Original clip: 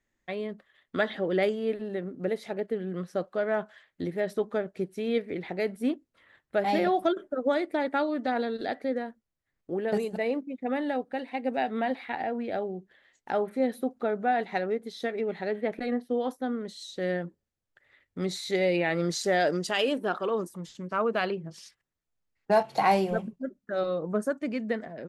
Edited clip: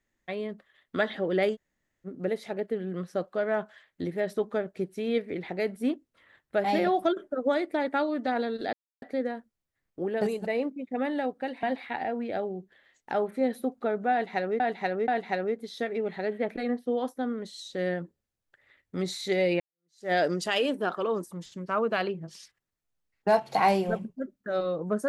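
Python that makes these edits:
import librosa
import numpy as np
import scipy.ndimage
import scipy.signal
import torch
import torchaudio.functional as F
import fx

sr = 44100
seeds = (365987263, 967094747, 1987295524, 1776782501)

y = fx.edit(x, sr, fx.room_tone_fill(start_s=1.55, length_s=0.51, crossfade_s=0.04),
    fx.insert_silence(at_s=8.73, length_s=0.29),
    fx.cut(start_s=11.34, length_s=0.48),
    fx.repeat(start_s=14.31, length_s=0.48, count=3),
    fx.fade_in_span(start_s=18.83, length_s=0.52, curve='exp'), tone=tone)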